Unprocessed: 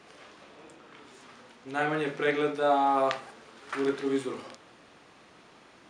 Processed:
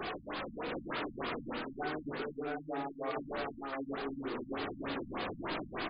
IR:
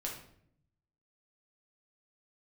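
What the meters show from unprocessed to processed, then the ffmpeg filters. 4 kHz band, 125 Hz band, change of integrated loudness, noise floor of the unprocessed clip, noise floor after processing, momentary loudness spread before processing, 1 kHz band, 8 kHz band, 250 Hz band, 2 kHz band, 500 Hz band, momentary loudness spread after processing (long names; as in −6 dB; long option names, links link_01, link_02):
−2.5 dB, −3.5 dB, −11.0 dB, −56 dBFS, −52 dBFS, 14 LU, −9.5 dB, below −25 dB, −4.5 dB, −6.0 dB, −9.5 dB, 2 LU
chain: -filter_complex "[0:a]aeval=exprs='val(0)+0.5*0.0133*sgn(val(0))':channel_layout=same,alimiter=limit=-20.5dB:level=0:latency=1:release=32,areverse,acompressor=threshold=-40dB:ratio=16,areverse,flanger=delay=2.6:depth=1.5:regen=54:speed=0.87:shape=sinusoidal,aecho=1:1:710:0.708,asplit=2[link_01][link_02];[1:a]atrim=start_sample=2205,adelay=48[link_03];[link_02][link_03]afir=irnorm=-1:irlink=0,volume=-10.5dB[link_04];[link_01][link_04]amix=inputs=2:normalize=0,afftfilt=real='re*lt(b*sr/1024,250*pow(5100/250,0.5+0.5*sin(2*PI*3.3*pts/sr)))':imag='im*lt(b*sr/1024,250*pow(5100/250,0.5+0.5*sin(2*PI*3.3*pts/sr)))':win_size=1024:overlap=0.75,volume=8dB"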